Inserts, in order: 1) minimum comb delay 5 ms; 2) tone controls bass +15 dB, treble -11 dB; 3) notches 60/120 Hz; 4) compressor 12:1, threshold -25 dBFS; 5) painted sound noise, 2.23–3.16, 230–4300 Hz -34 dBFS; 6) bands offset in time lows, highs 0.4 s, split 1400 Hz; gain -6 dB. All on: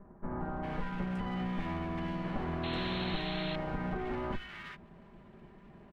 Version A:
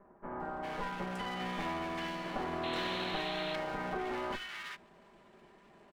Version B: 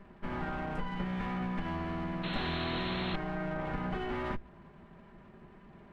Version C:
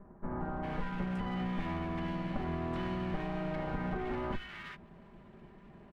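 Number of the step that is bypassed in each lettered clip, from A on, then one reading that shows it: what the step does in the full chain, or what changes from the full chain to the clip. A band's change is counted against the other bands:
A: 2, momentary loudness spread change -14 LU; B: 6, echo-to-direct 1.0 dB to none; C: 5, 4 kHz band -8.5 dB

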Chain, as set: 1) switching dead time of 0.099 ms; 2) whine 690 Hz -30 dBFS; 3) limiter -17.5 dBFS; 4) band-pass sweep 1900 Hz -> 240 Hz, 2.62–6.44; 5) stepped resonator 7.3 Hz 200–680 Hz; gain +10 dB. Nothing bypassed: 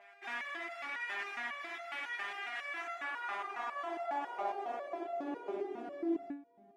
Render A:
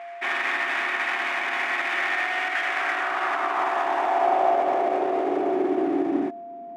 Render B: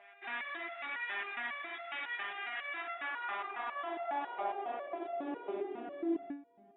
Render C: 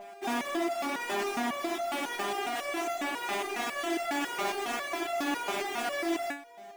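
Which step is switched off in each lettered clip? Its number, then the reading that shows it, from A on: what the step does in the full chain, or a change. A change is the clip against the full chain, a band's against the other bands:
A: 5, 250 Hz band -1.5 dB; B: 1, distortion -12 dB; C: 4, 8 kHz band +14.0 dB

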